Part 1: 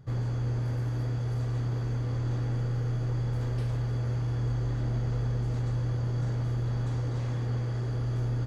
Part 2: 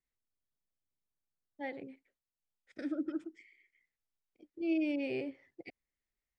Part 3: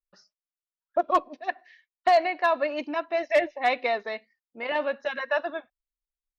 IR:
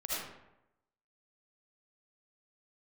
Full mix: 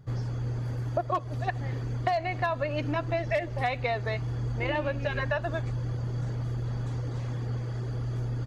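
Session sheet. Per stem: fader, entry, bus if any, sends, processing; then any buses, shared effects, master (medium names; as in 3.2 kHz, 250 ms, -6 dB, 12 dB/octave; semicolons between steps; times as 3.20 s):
0.0 dB, 0.00 s, no send, reverb removal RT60 0.56 s
-4.0 dB, 0.00 s, no send, none
+2.0 dB, 0.00 s, no send, none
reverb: none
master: compression 6:1, threshold -25 dBFS, peak gain reduction 11 dB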